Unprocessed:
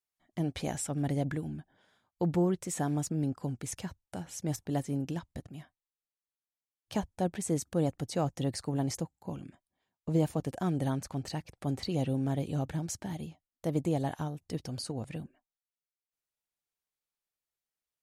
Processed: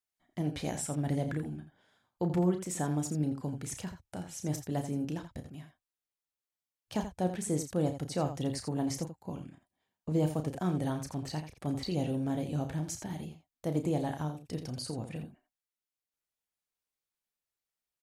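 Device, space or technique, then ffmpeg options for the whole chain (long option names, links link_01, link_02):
slapback doubling: -filter_complex "[0:a]asplit=3[link_01][link_02][link_03];[link_02]adelay=33,volume=-8.5dB[link_04];[link_03]adelay=84,volume=-10dB[link_05];[link_01][link_04][link_05]amix=inputs=3:normalize=0,volume=-1.5dB"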